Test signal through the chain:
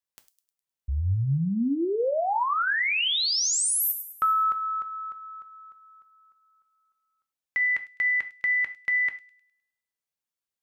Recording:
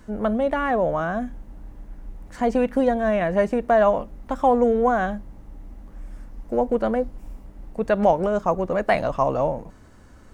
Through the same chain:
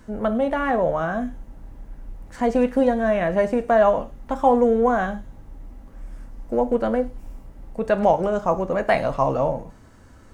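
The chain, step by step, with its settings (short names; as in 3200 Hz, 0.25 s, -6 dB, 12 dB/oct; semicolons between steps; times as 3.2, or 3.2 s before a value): thin delay 0.103 s, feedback 44%, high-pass 5000 Hz, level -10 dB; non-linear reverb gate 0.12 s falling, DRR 8.5 dB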